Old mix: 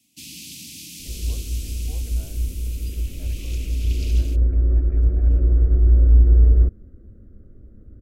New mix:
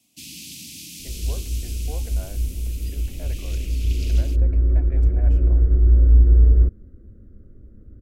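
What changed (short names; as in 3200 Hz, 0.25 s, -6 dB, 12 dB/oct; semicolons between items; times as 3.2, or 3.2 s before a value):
speech +9.5 dB; second sound: add bell 790 Hz -5 dB 0.64 oct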